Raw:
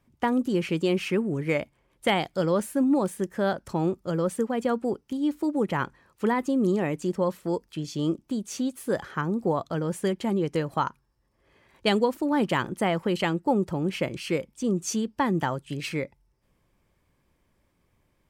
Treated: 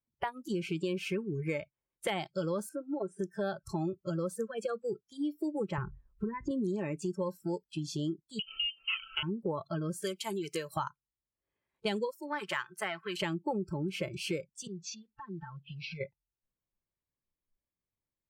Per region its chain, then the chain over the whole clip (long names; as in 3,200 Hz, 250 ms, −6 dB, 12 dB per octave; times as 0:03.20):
0:02.69–0:03.19: downward compressor 2 to 1, threshold −37 dBFS + high-frequency loss of the air 88 metres + hollow resonant body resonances 420/670/1,400 Hz, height 13 dB, ringing for 30 ms
0:05.78–0:06.51: RIAA equalisation playback + downward compressor 16 to 1, threshold −21 dBFS
0:08.39–0:09.23: lower of the sound and its delayed copy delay 0.39 ms + voice inversion scrambler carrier 3,100 Hz + parametric band 1,300 Hz +8 dB 0.24 octaves
0:10.02–0:10.77: high-pass filter 190 Hz + spectral tilt +2.5 dB per octave
0:12.11–0:13.22: gain on one half-wave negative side −3 dB + high-pass filter 830 Hz 6 dB per octave + dynamic equaliser 1,700 Hz, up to +6 dB, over −45 dBFS, Q 1.1
0:14.67–0:16.01: one scale factor per block 5 bits + low-pass filter 4,900 Hz 24 dB per octave + downward compressor 10 to 1, threshold −36 dBFS
whole clip: noise reduction from a noise print of the clip's start 27 dB; downward compressor 3 to 1, threshold −33 dBFS